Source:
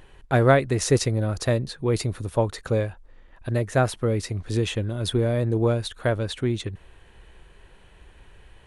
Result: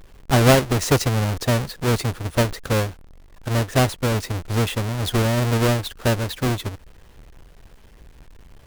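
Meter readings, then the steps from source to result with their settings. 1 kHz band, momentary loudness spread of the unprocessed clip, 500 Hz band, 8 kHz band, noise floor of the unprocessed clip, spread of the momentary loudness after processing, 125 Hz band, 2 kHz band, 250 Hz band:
+4.5 dB, 7 LU, +0.5 dB, +5.0 dB, -53 dBFS, 7 LU, +3.5 dB, +4.5 dB, +3.5 dB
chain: square wave that keeps the level; vibrato 1.3 Hz 54 cents; trim -1.5 dB

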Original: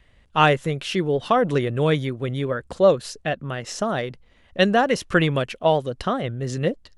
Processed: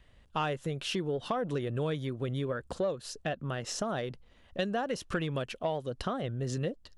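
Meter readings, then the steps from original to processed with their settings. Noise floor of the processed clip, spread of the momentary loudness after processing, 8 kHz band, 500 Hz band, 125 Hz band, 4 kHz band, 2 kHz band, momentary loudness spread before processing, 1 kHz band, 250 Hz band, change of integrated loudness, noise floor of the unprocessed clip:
-60 dBFS, 4 LU, -5.5 dB, -12.5 dB, -9.5 dB, -10.5 dB, -14.0 dB, 9 LU, -13.5 dB, -11.0 dB, -12.0 dB, -56 dBFS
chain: peaking EQ 2.1 kHz -5 dB 0.4 oct; compression 4:1, threshold -26 dBFS, peak gain reduction 13 dB; saturation -15 dBFS, distortion -27 dB; trim -3.5 dB

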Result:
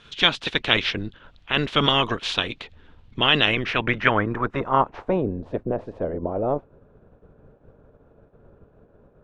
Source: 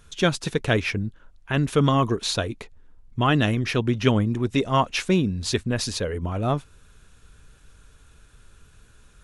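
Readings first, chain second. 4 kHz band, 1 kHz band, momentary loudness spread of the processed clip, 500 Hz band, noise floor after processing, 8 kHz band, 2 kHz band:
+7.5 dB, +2.5 dB, 11 LU, 0.0 dB, -57 dBFS, under -10 dB, +5.5 dB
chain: spectral peaks clipped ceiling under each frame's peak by 18 dB; low-pass sweep 3.4 kHz -> 600 Hz, 3.32–5.43 s; trim -2 dB

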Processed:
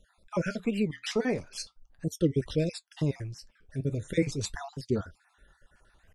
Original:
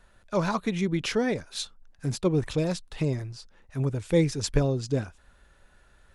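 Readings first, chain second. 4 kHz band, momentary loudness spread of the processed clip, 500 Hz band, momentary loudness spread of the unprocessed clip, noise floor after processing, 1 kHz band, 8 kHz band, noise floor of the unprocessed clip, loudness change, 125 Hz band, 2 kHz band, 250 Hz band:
-4.5 dB, 12 LU, -4.0 dB, 11 LU, -71 dBFS, -8.0 dB, -4.0 dB, -60 dBFS, -3.5 dB, -4.5 dB, -3.5 dB, -2.5 dB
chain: random holes in the spectrogram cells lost 50%; flange 0.4 Hz, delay 3.6 ms, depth 9.2 ms, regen -65%; warped record 45 rpm, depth 250 cents; trim +3 dB

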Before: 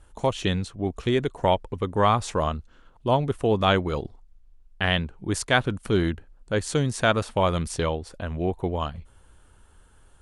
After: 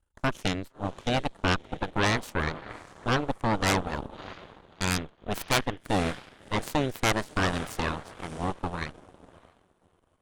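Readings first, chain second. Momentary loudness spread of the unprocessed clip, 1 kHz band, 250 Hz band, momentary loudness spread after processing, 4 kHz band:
10 LU, -4.0 dB, -3.5 dB, 12 LU, -2.5 dB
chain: echo that smears into a reverb 625 ms, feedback 41%, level -12 dB; Chebyshev shaper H 3 -9 dB, 8 -14 dB, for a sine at -4.5 dBFS; trim -1.5 dB

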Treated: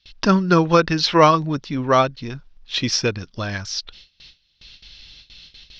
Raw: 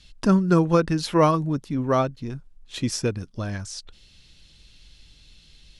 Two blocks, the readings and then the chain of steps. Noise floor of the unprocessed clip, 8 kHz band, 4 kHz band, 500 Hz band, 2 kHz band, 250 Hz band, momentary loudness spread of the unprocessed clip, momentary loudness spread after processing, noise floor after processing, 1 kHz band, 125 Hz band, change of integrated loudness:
-54 dBFS, +5.0 dB, +11.5 dB, +4.0 dB, +10.0 dB, +1.5 dB, 17 LU, 14 LU, -65 dBFS, +7.5 dB, +1.0 dB, +4.0 dB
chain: gate with hold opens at -41 dBFS; FFT filter 250 Hz 0 dB, 3.7 kHz +12 dB, 5.7 kHz +9 dB, 8.7 kHz -24 dB; trim +1 dB

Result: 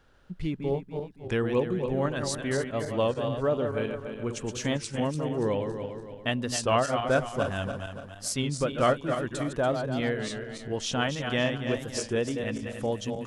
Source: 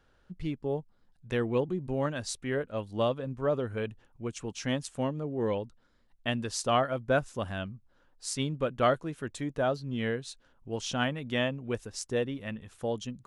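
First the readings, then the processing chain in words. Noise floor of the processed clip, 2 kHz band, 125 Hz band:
-46 dBFS, +3.0 dB, +3.5 dB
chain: backward echo that repeats 143 ms, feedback 62%, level -7 dB; in parallel at -3 dB: compression, threshold -35 dBFS, peak gain reduction 15 dB; on the sum: warped record 33 1/3 rpm, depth 100 cents

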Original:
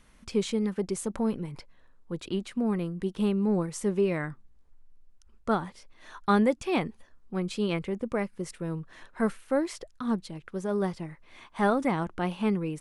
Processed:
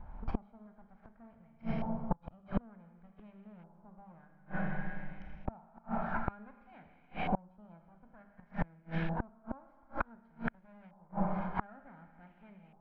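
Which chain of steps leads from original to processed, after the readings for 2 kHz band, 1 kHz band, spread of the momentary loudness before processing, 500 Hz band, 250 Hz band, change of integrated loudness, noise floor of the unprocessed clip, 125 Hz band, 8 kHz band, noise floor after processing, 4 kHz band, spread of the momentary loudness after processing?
-6.5 dB, -7.0 dB, 13 LU, -16.0 dB, -12.5 dB, -10.0 dB, -58 dBFS, -7.0 dB, under -35 dB, -64 dBFS, -17.5 dB, 22 LU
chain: comb filter that takes the minimum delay 1.3 ms; in parallel at -2.5 dB: peak limiter -23 dBFS, peak gain reduction 9 dB; on the sum: steep low-pass 6 kHz; hum notches 50/100/150/200/250/300 Hz; Schroeder reverb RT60 2.2 s, combs from 27 ms, DRR 4.5 dB; inverted gate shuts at -23 dBFS, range -36 dB; tilt EQ -1.5 dB/octave; LFO low-pass saw up 0.55 Hz 890–2500 Hz; peaking EQ 480 Hz -6.5 dB 0.47 oct; trim +1.5 dB

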